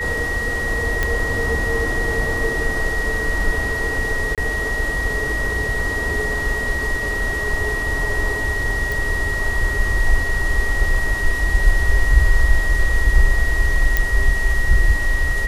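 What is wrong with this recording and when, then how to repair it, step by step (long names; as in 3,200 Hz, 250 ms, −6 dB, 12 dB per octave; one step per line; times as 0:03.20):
whistle 1,900 Hz −22 dBFS
0:01.03: click −6 dBFS
0:04.35–0:04.38: drop-out 27 ms
0:08.92: click
0:13.97: click −3 dBFS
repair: click removal
notch filter 1,900 Hz, Q 30
repair the gap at 0:04.35, 27 ms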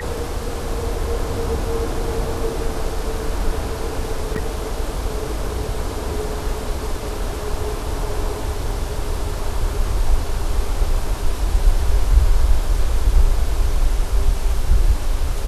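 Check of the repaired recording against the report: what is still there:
none of them is left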